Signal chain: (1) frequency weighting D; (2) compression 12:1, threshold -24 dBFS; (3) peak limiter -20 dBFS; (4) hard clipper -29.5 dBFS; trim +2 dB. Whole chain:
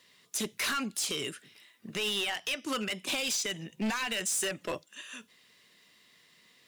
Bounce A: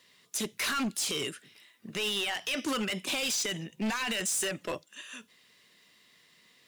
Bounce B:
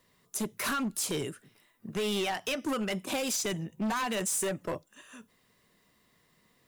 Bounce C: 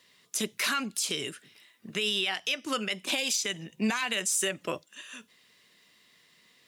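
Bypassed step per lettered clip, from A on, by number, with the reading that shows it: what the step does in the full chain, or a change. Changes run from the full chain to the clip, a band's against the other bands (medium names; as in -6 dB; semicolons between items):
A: 2, mean gain reduction 6.0 dB; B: 1, 4 kHz band -8.0 dB; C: 4, distortion -10 dB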